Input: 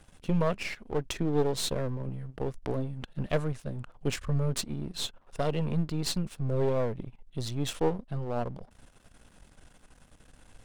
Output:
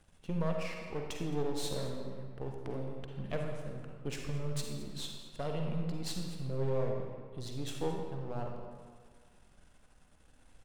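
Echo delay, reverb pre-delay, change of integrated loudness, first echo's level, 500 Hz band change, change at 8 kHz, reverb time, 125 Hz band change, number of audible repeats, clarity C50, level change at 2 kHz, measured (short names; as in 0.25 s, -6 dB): 0.218 s, 40 ms, -7.0 dB, -16.5 dB, -6.5 dB, -7.5 dB, 1.8 s, -7.0 dB, 1, 2.0 dB, -7.0 dB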